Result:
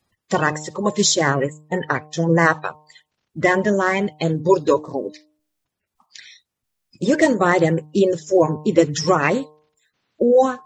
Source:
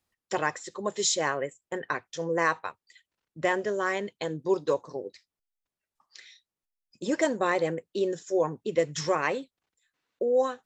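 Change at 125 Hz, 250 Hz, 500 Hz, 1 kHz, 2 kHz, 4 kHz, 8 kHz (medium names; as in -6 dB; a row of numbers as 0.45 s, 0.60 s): +17.0 dB, +13.5 dB, +9.0 dB, +9.5 dB, +9.5 dB, +9.0 dB, +8.0 dB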